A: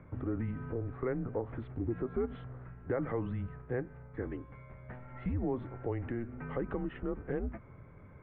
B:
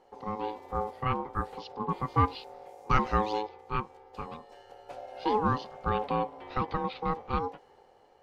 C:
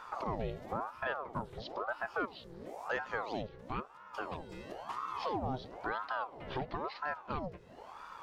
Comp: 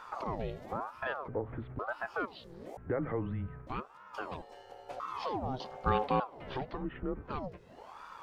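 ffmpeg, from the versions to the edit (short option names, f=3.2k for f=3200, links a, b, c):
-filter_complex "[0:a]asplit=3[a][b][c];[1:a]asplit=2[d][e];[2:a]asplit=6[f][g][h][i][j][k];[f]atrim=end=1.282[l];[a]atrim=start=1.278:end=1.792[m];[g]atrim=start=1.788:end=2.772[n];[b]atrim=start=2.768:end=3.672[o];[h]atrim=start=3.668:end=4.422[p];[d]atrim=start=4.418:end=5.002[q];[i]atrim=start=4.998:end=5.602[r];[e]atrim=start=5.598:end=6.202[s];[j]atrim=start=6.198:end=6.86[t];[c]atrim=start=6.7:end=7.35[u];[k]atrim=start=7.19[v];[l][m]acrossfade=d=0.004:c1=hsin:c2=hsin[w];[w][n]acrossfade=d=0.004:c1=hsin:c2=hsin[x];[x][o]acrossfade=d=0.004:c1=hsin:c2=hsin[y];[y][p]acrossfade=d=0.004:c1=hsin:c2=hsin[z];[z][q]acrossfade=d=0.004:c1=hsin:c2=hsin[aa];[aa][r]acrossfade=d=0.004:c1=hsin:c2=hsin[ab];[ab][s]acrossfade=d=0.004:c1=hsin:c2=hsin[ac];[ac][t]acrossfade=d=0.004:c1=hsin:c2=hsin[ad];[ad][u]acrossfade=d=0.16:c1=tri:c2=tri[ae];[ae][v]acrossfade=d=0.16:c1=tri:c2=tri"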